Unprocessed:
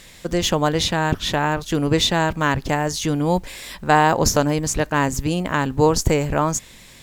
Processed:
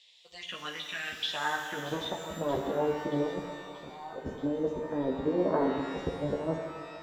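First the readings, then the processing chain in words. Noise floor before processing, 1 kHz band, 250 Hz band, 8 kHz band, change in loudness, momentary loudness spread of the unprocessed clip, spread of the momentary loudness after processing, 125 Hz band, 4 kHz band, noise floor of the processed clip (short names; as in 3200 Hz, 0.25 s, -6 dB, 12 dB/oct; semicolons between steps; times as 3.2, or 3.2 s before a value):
-45 dBFS, -15.5 dB, -11.5 dB, -25.0 dB, -12.5 dB, 6 LU, 12 LU, -18.5 dB, -13.5 dB, -49 dBFS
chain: band-pass sweep 3400 Hz -> 480 Hz, 1.15–2.43; negative-ratio compressor -29 dBFS, ratio -0.5; spectral noise reduction 8 dB; envelope phaser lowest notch 230 Hz, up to 2500 Hz, full sweep at -24 dBFS; air absorption 80 m; thin delay 0.63 s, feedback 68%, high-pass 3500 Hz, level -13.5 dB; chorus voices 6, 0.77 Hz, delay 13 ms, depth 2.7 ms; shimmer reverb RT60 1.8 s, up +12 st, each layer -8 dB, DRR 4.5 dB; gain +2 dB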